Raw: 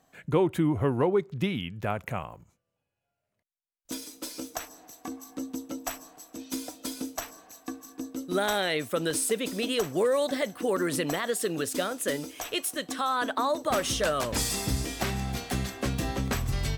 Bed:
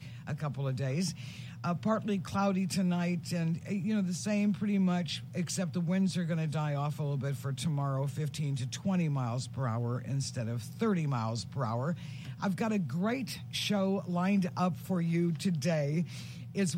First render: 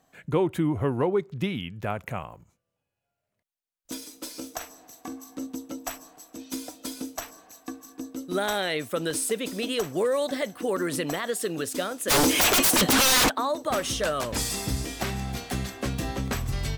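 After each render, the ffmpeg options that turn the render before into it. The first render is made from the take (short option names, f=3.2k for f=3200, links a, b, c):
-filter_complex "[0:a]asettb=1/sr,asplit=3[a][b][c];[a]atrim=end=4.304[d];[b]atrim=start=4.3:end=5.47,asetpts=PTS-STARTPTS,afade=t=in:d=0.004:c=qsin,afade=t=out:st=1.166:d=0.004:c=qsin,asplit=2[e][f];[f]adelay=45,volume=-12dB[g];[e][g]amix=inputs=2:normalize=0,atrim=end_sample=51597[h];[c]atrim=start=5.466[i];[d][h]acrossfade=d=0.004:c1=hsin:c2=qsin[j];[j][i]acrossfade=d=0.004:c1=qsin:c2=hsin,asplit=3[k][l][m];[k]afade=t=out:st=12.09:d=0.02[n];[l]aeval=exprs='0.15*sin(PI/2*10*val(0)/0.15)':c=same,afade=t=in:st=12.09:d=0.02,afade=t=out:st=13.28:d=0.02[o];[m]afade=t=in:st=13.28:d=0.02[p];[n][o][p]amix=inputs=3:normalize=0"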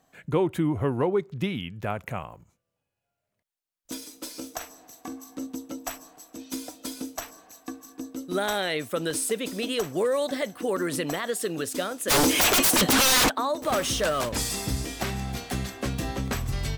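-filter_complex "[0:a]asettb=1/sr,asplit=3[a][b][c];[a]atrim=end=13.624[d];[b]atrim=start=13.62:end=14.29,asetpts=PTS-STARTPTS,afade=t=in:d=0.004:c=qsin,afade=t=out:st=0.666:d=0.004:c=qsin,aeval=exprs='val(0)+0.5*0.0224*sgn(val(0))':c=same[e];[c]atrim=start=14.286[f];[d][e]acrossfade=d=0.004:c1=hsin:c2=qsin[g];[g][f]acrossfade=d=0.004:c1=qsin:c2=hsin"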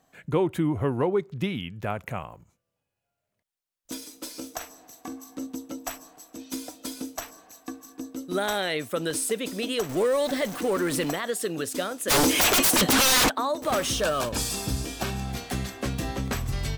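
-filter_complex "[0:a]asettb=1/sr,asplit=3[a][b][c];[a]atrim=end=9.894[d];[b]atrim=start=9.89:end=11.11,asetpts=PTS-STARTPTS,afade=t=in:d=0.004:c=qsin,afade=t=out:st=1.216:d=0.004:c=qsin,aeval=exprs='val(0)+0.5*0.0251*sgn(val(0))':c=same[e];[c]atrim=start=11.106[f];[d][e]acrossfade=d=0.004:c1=hsin:c2=qsin[g];[g][f]acrossfade=d=0.004:c1=qsin:c2=hsin,asettb=1/sr,asplit=3[h][i][j];[h]atrim=end=13.954[k];[i]atrim=start=13.95:end=15.3,asetpts=PTS-STARTPTS,afade=t=in:d=0.004:c=qsin,afade=t=out:st=1.346:d=0.004:c=qsin,asuperstop=centerf=2000:order=4:qfactor=7.2[l];[j]atrim=start=15.296[m];[k][l]acrossfade=d=0.004:c1=hsin:c2=qsin[n];[n][m]acrossfade=d=0.004:c1=qsin:c2=hsin"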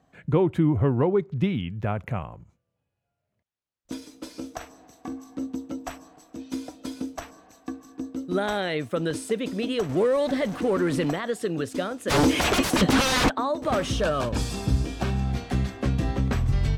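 -af "highpass=f=100:p=1,aemphasis=mode=reproduction:type=bsi"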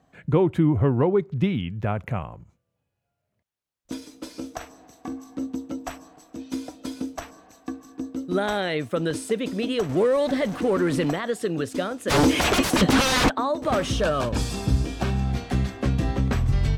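-af "volume=1.5dB"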